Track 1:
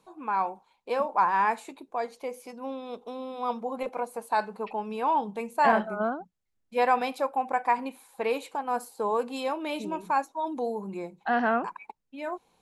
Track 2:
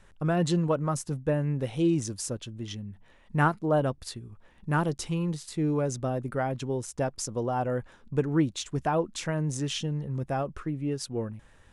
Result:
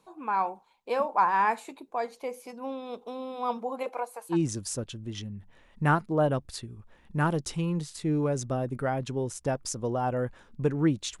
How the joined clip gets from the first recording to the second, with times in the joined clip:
track 1
3.57–4.37 s: high-pass 160 Hz -> 1.1 kHz
4.33 s: go over to track 2 from 1.86 s, crossfade 0.08 s

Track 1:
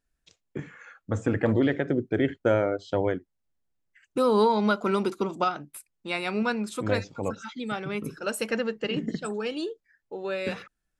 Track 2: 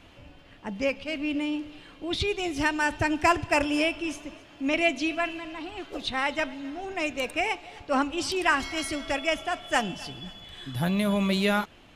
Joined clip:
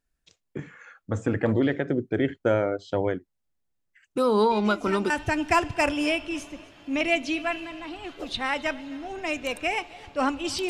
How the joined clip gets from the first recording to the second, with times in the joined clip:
track 1
4.51 s: add track 2 from 2.24 s 0.59 s -10 dB
5.10 s: go over to track 2 from 2.83 s

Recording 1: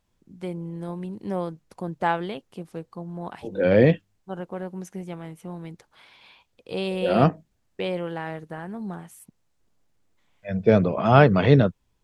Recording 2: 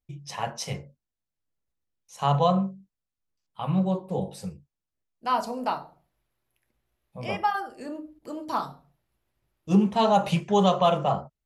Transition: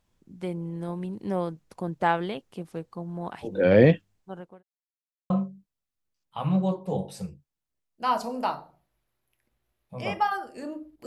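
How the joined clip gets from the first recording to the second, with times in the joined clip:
recording 1
3.81–4.63 s: fade out equal-power
4.63–5.30 s: mute
5.30 s: go over to recording 2 from 2.53 s

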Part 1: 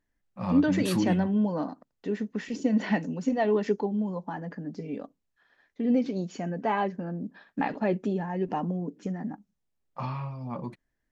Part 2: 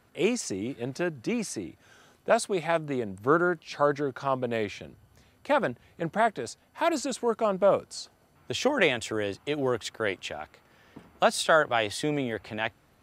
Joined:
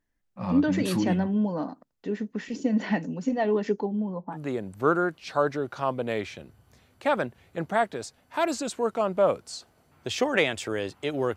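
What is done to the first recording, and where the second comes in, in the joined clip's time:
part 1
3.86–4.38 s: low-pass 6.2 kHz -> 1.4 kHz
4.35 s: go over to part 2 from 2.79 s, crossfade 0.06 s

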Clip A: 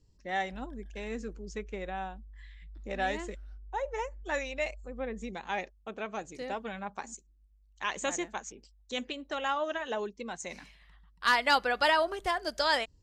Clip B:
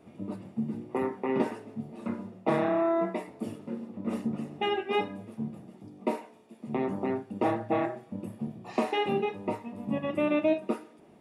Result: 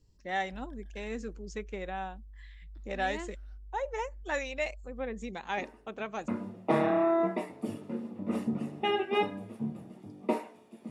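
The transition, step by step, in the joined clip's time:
clip A
5.57 s: add clip B from 1.35 s 0.71 s -18 dB
6.28 s: go over to clip B from 2.06 s

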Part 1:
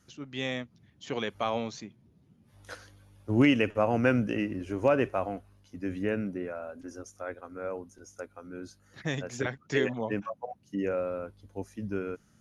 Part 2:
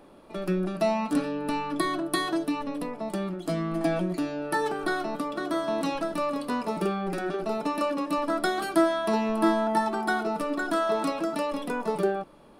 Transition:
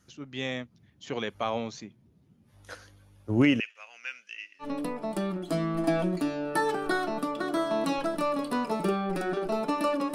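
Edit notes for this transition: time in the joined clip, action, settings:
part 1
3.60–4.69 s: Chebyshev band-pass 2.4–6.4 kHz, order 2
4.64 s: go over to part 2 from 2.61 s, crossfade 0.10 s

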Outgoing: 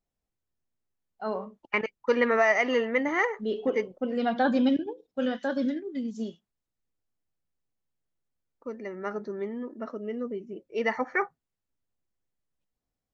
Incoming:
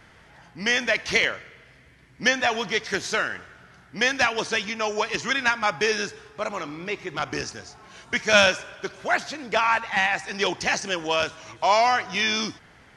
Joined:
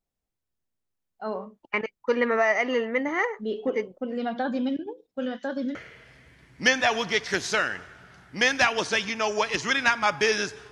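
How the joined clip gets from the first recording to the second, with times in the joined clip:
outgoing
3.87–5.75 s: compression 2:1, threshold -27 dBFS
5.75 s: go over to incoming from 1.35 s

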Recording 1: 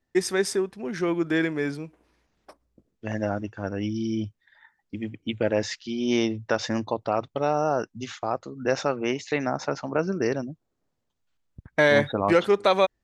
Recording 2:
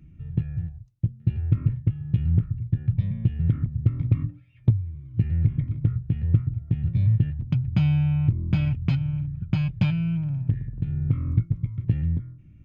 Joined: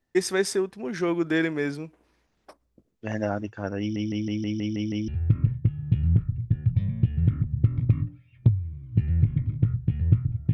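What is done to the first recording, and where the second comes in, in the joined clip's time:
recording 1
3.80 s: stutter in place 0.16 s, 8 plays
5.08 s: go over to recording 2 from 1.30 s

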